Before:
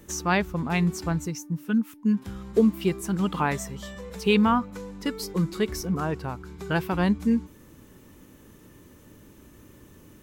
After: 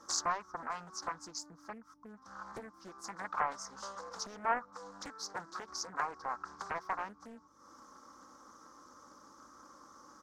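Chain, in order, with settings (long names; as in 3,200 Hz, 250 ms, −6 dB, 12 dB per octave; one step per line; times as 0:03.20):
high-shelf EQ 3,500 Hz −11.5 dB
notch filter 1,700 Hz, Q 9.7
comb filter 3.7 ms, depth 59%
downward compressor 4 to 1, threshold −37 dBFS, peak gain reduction 19 dB
mains hum 50 Hz, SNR 17 dB
pair of resonant band-passes 2,600 Hz, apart 2.2 octaves
highs frequency-modulated by the lows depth 0.73 ms
level +15 dB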